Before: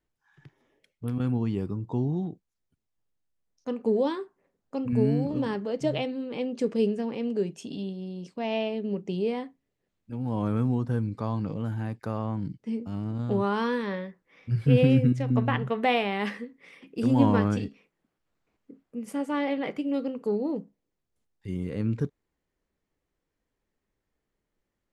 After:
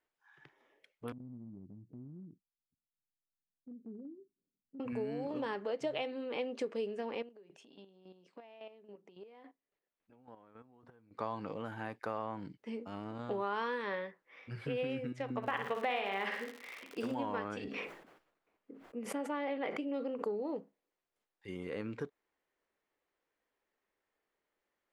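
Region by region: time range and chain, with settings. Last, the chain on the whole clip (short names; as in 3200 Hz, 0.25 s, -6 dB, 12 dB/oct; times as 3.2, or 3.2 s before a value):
1.12–4.8 inverse Chebyshev low-pass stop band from 830 Hz, stop band 60 dB + compressor 2:1, threshold -37 dBFS
7.22–11.19 high shelf 4900 Hz -6.5 dB + compressor 16:1, threshold -40 dBFS + chopper 3.6 Hz, depth 65%, duty 25%
15.42–17.14 flutter echo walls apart 9.7 m, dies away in 0.49 s + crackle 180/s -33 dBFS
17.64–20.42 tilt shelf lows +3.5 dB, about 670 Hz + sustainer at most 61 dB/s
whole clip: tone controls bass -12 dB, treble -10 dB; compressor 6:1, threshold -32 dBFS; low shelf 330 Hz -10 dB; gain +2.5 dB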